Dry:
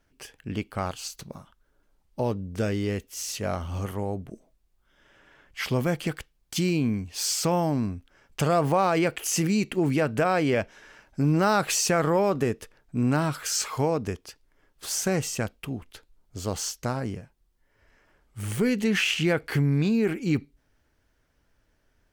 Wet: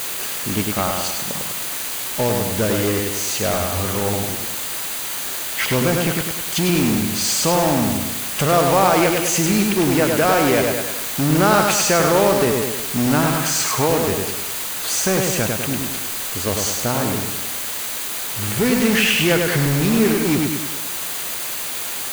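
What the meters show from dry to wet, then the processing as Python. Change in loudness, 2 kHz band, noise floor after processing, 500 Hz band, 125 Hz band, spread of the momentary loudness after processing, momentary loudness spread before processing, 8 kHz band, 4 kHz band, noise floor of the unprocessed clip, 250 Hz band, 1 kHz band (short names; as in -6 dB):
+8.0 dB, +10.0 dB, -27 dBFS, +8.0 dB, +5.0 dB, 8 LU, 15 LU, +11.5 dB, +11.0 dB, -70 dBFS, +7.0 dB, +8.5 dB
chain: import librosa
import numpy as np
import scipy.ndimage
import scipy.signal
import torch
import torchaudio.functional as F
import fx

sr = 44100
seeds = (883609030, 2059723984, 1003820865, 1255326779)

p1 = fx.high_shelf(x, sr, hz=11000.0, db=-9.5)
p2 = p1 + fx.echo_feedback(p1, sr, ms=101, feedback_pct=48, wet_db=-4.5, dry=0)
p3 = fx.quant_dither(p2, sr, seeds[0], bits=6, dither='triangular')
p4 = fx.low_shelf(p3, sr, hz=130.0, db=-8.0)
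p5 = fx.notch(p4, sr, hz=5400.0, q=7.7)
p6 = (np.mod(10.0 ** (22.5 / 20.0) * p5 + 1.0, 2.0) - 1.0) / 10.0 ** (22.5 / 20.0)
p7 = p5 + (p6 * librosa.db_to_amplitude(-6.0))
y = p7 * librosa.db_to_amplitude(6.5)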